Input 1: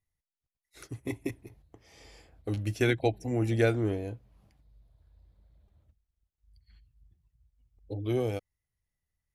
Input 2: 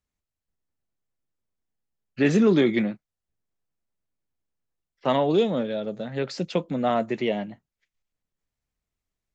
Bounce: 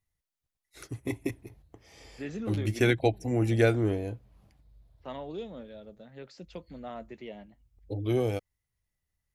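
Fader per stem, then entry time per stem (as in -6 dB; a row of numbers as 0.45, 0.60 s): +2.0, -17.5 dB; 0.00, 0.00 s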